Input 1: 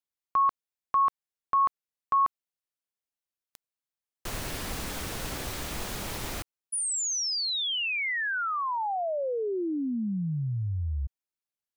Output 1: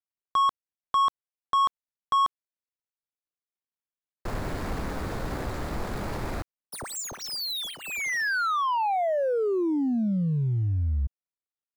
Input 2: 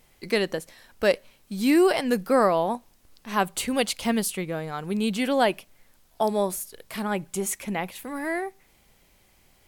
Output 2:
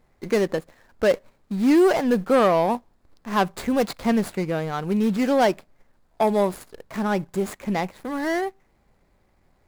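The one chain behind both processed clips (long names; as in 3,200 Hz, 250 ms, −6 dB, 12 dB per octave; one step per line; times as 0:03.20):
running median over 15 samples
leveller curve on the samples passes 1
in parallel at −11.5 dB: hard clipping −26 dBFS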